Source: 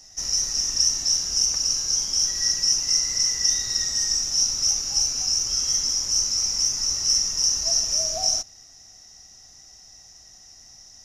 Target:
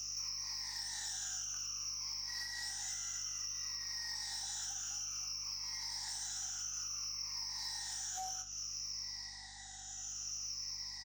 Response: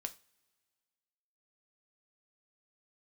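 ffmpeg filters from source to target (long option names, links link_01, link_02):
-filter_complex "[0:a]afftfilt=real='re*pow(10,19/40*sin(2*PI*(0.89*log(max(b,1)*sr/1024/100)/log(2)-(-0.58)*(pts-256)/sr)))':imag='im*pow(10,19/40*sin(2*PI*(0.89*log(max(b,1)*sr/1024/100)/log(2)-(-0.58)*(pts-256)/sr)))':win_size=1024:overlap=0.75,afftfilt=real='re*between(b*sr/4096,740,8800)':imag='im*between(b*sr/4096,740,8800)':win_size=4096:overlap=0.75,acrossover=split=3300[link_01][link_02];[link_02]acompressor=threshold=-29dB:ratio=4:attack=1:release=60[link_03];[link_01][link_03]amix=inputs=2:normalize=0,alimiter=limit=-21.5dB:level=0:latency=1:release=232,acompressor=threshold=-38dB:ratio=16,asoftclip=type=tanh:threshold=-37dB,aeval=exprs='val(0)+0.000631*(sin(2*PI*50*n/s)+sin(2*PI*2*50*n/s)/2+sin(2*PI*3*50*n/s)/3+sin(2*PI*4*50*n/s)/4+sin(2*PI*5*50*n/s)/5)':channel_layout=same,asplit=2[link_04][link_05];[link_05]adelay=23,volume=-11.5dB[link_06];[link_04][link_06]amix=inputs=2:normalize=0,aecho=1:1:21|69:0.501|0.282"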